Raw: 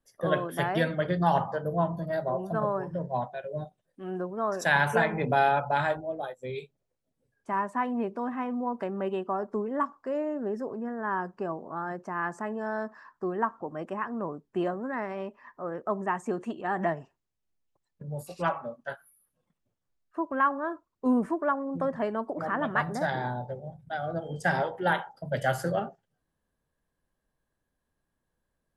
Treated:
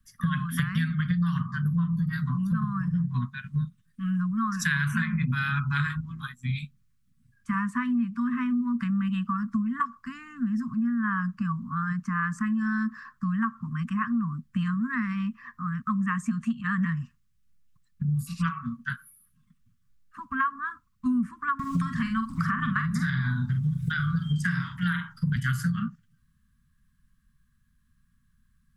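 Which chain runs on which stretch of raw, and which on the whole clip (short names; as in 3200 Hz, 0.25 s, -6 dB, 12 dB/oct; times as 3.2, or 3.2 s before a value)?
21.59–25.36 bell 230 Hz -6.5 dB 0.25 oct + doubler 45 ms -7 dB + three-band squash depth 100%
whole clip: Chebyshev band-stop 240–1100 Hz, order 5; low shelf 330 Hz +10 dB; compressor 6:1, threshold -31 dBFS; gain +7.5 dB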